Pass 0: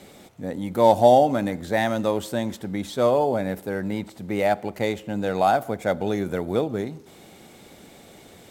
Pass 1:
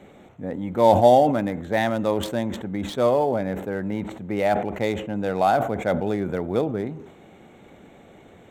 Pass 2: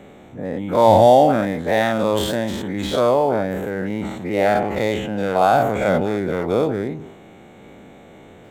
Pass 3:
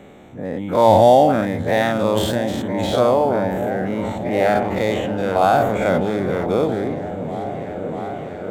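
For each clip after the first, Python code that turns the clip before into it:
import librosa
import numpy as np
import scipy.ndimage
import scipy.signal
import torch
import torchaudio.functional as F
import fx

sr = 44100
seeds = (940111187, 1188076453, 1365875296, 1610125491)

y1 = fx.wiener(x, sr, points=9)
y1 = fx.sustainer(y1, sr, db_per_s=75.0)
y2 = fx.spec_dilate(y1, sr, span_ms=120)
y3 = fx.echo_opening(y2, sr, ms=641, hz=200, octaves=1, feedback_pct=70, wet_db=-6)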